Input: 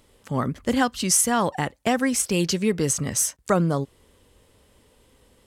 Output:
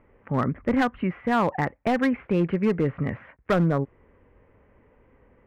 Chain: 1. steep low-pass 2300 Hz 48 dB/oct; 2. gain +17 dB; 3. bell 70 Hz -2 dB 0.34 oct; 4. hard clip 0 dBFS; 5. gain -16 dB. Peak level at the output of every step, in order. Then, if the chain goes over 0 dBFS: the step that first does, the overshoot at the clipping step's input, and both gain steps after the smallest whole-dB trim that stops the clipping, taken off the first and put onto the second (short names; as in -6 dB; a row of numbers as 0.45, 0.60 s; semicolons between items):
-8.0, +9.0, +9.0, 0.0, -16.0 dBFS; step 2, 9.0 dB; step 2 +8 dB, step 5 -7 dB